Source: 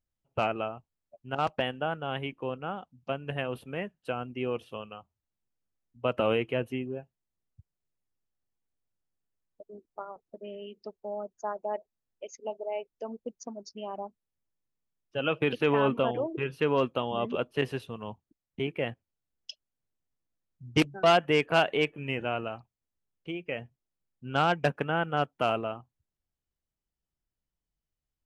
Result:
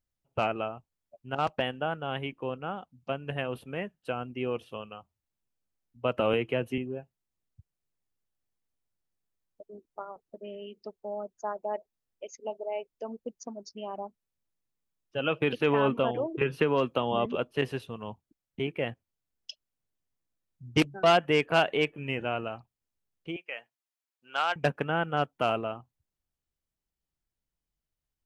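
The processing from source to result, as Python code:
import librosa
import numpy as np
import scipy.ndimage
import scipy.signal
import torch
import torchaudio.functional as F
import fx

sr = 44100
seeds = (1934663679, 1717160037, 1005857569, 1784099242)

y = fx.band_squash(x, sr, depth_pct=70, at=(6.33, 6.78))
y = fx.band_squash(y, sr, depth_pct=100, at=(16.41, 17.26))
y = fx.highpass(y, sr, hz=870.0, slope=12, at=(23.36, 24.56))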